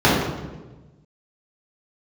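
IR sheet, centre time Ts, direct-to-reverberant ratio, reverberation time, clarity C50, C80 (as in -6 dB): 73 ms, -8.5 dB, 1.2 s, 0.5 dB, 3.0 dB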